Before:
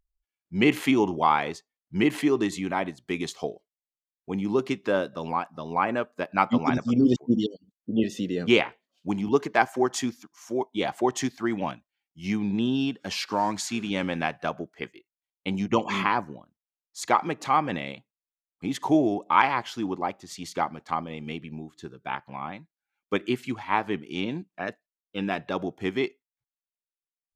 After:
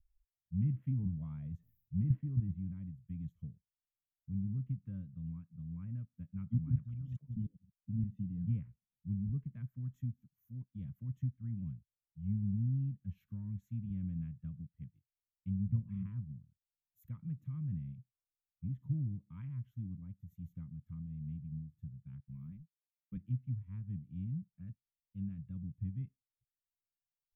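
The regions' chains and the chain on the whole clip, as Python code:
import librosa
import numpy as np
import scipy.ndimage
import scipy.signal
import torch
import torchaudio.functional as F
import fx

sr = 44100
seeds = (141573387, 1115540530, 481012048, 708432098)

y = fx.chain(x, sr, fx.peak_eq(hz=670.0, db=14.5, octaves=0.61),
    fx.sustainer(db_per_s=130.0), at=(0.73, 2.58))
y = fx.chain(y, sr, fx.highpass(hz=280.0, slope=12),
    fx.spectral_comp(ratio=4.0), at=(6.75, 7.36))
y = fx.chain(y, sr, fx.highpass(hz=170.0, slope=12),
    fx.leveller(passes=1), at=(22.2, 23.17))
y = scipy.signal.sosfilt(scipy.signal.cheby2(4, 50, [340.0, 9500.0], 'bandstop', fs=sr, output='sos'), y)
y = fx.env_lowpass_down(y, sr, base_hz=1900.0, full_db=-38.5)
y = y * librosa.db_to_amplitude(6.5)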